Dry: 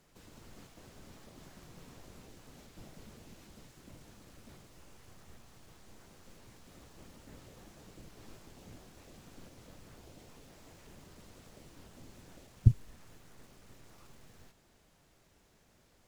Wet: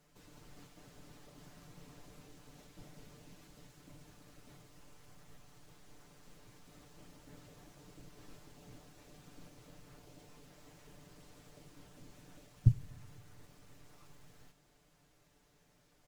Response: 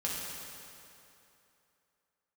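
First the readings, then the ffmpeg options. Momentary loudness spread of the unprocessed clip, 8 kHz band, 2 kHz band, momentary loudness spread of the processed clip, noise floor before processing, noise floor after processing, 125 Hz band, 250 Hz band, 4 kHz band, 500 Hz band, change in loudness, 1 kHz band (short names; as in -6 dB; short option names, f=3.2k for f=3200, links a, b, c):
26 LU, -3.0 dB, -2.5 dB, 4 LU, -67 dBFS, -70 dBFS, -3.0 dB, -3.0 dB, -3.0 dB, -3.5 dB, -4.0 dB, -2.5 dB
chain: -filter_complex "[0:a]aecho=1:1:6.8:0.65,asplit=2[a][b];[1:a]atrim=start_sample=2205[c];[b][c]afir=irnorm=-1:irlink=0,volume=-21dB[d];[a][d]amix=inputs=2:normalize=0,volume=-5dB"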